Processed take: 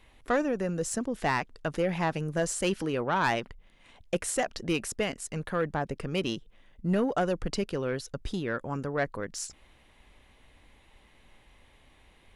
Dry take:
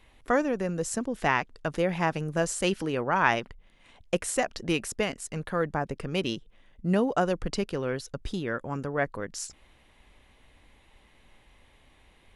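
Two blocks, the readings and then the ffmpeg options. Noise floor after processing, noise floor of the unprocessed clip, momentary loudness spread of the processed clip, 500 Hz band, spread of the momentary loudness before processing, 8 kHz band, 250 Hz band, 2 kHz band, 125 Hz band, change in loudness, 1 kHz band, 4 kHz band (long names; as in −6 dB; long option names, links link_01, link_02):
−60 dBFS, −60 dBFS, 8 LU, −1.5 dB, 10 LU, −0.5 dB, −1.0 dB, −3.0 dB, −1.0 dB, −1.5 dB, −2.5 dB, −1.5 dB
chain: -af "asoftclip=type=tanh:threshold=-18dB"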